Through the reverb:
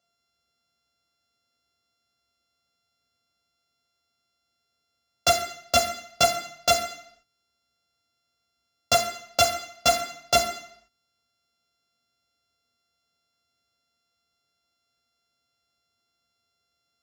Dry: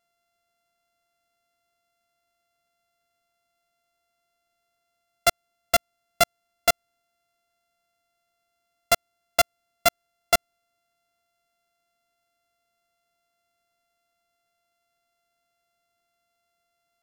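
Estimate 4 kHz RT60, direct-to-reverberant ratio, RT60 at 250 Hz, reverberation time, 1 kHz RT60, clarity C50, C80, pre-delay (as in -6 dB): 0.70 s, -1.5 dB, 0.60 s, 0.65 s, 0.70 s, 7.0 dB, 9.5 dB, 3 ms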